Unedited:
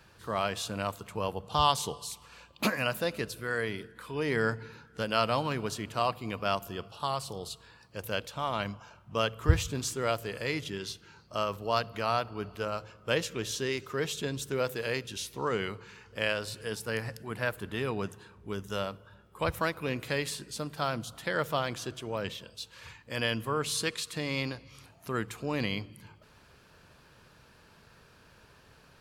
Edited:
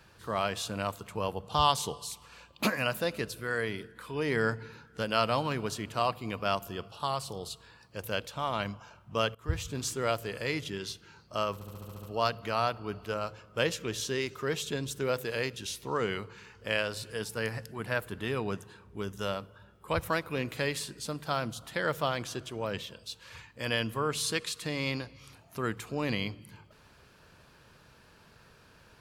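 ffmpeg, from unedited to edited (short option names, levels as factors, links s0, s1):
-filter_complex "[0:a]asplit=9[s0][s1][s2][s3][s4][s5][s6][s7][s8];[s0]atrim=end=9.35,asetpts=PTS-STARTPTS,afade=t=out:st=9.346:d=0.004:c=hsin:silence=0.125893[s9];[s1]atrim=start=9.35:end=11.612,asetpts=PTS-STARTPTS,afade=t=in:d=0.53:silence=0.125893[s10];[s2]atrim=start=11.538:end=11.612[s11];[s3]atrim=start=11.538:end=11.612[s12];[s4]atrim=start=11.538:end=11.612[s13];[s5]atrim=start=11.538:end=11.612[s14];[s6]atrim=start=11.538:end=11.612[s15];[s7]atrim=start=11.538:end=11.612[s16];[s8]atrim=start=11.538[s17];[s9][s10]concat=n=2:v=0:a=1[s18];[s18][s11]acrossfade=d=0.004:c1=hsin:c2=hsin[s19];[s19][s12]acrossfade=d=0.004:c1=hsin:c2=hsin[s20];[s20][s13]acrossfade=d=0.004:c1=hsin:c2=hsin[s21];[s21][s14]acrossfade=d=0.004:c1=hsin:c2=hsin[s22];[s22][s15]acrossfade=d=0.004:c1=hsin:c2=hsin[s23];[s23][s16]acrossfade=d=0.004:c1=hsin:c2=hsin[s24];[s24][s17]acrossfade=d=0.004:c1=hsin:c2=hsin"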